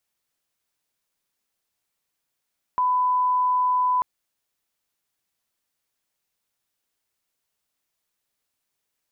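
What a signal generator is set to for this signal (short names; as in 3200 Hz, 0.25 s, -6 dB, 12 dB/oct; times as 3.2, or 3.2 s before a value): line-up tone -18 dBFS 1.24 s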